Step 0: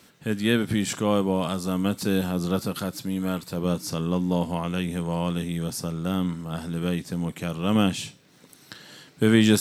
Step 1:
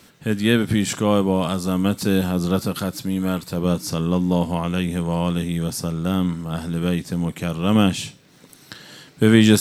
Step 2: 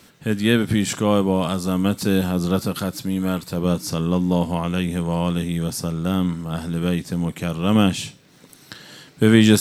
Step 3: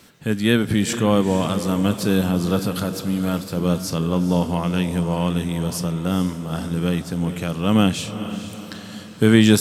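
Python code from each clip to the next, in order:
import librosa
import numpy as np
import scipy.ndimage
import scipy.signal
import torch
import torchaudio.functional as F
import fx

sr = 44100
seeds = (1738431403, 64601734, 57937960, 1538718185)

y1 = fx.low_shelf(x, sr, hz=68.0, db=8.0)
y1 = F.gain(torch.from_numpy(y1), 4.0).numpy()
y2 = y1
y3 = fx.echo_diffused(y2, sr, ms=459, feedback_pct=49, wet_db=-11.0)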